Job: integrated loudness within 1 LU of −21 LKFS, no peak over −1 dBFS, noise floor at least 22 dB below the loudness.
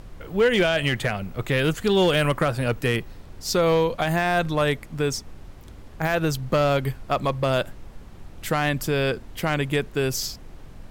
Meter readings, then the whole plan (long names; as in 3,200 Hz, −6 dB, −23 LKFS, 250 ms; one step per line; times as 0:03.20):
share of clipped samples 0.5%; peaks flattened at −13.5 dBFS; background noise floor −44 dBFS; target noise floor −46 dBFS; integrated loudness −23.5 LKFS; sample peak −13.5 dBFS; target loudness −21.0 LKFS
→ clipped peaks rebuilt −13.5 dBFS
noise reduction from a noise print 6 dB
level +2.5 dB